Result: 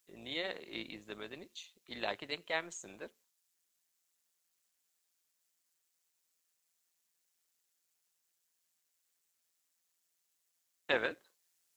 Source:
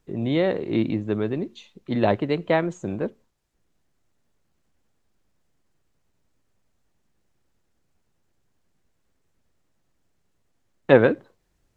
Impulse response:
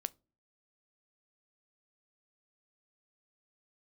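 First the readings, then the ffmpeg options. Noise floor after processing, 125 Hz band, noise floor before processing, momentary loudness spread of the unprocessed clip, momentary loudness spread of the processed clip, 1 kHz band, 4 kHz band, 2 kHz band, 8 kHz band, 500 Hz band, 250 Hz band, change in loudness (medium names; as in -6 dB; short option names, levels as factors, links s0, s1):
-81 dBFS, -30.0 dB, -71 dBFS, 14 LU, 17 LU, -15.0 dB, -3.0 dB, -8.5 dB, no reading, -19.5 dB, -24.5 dB, -16.0 dB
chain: -af "aderivative,tremolo=f=170:d=0.519,volume=1.88"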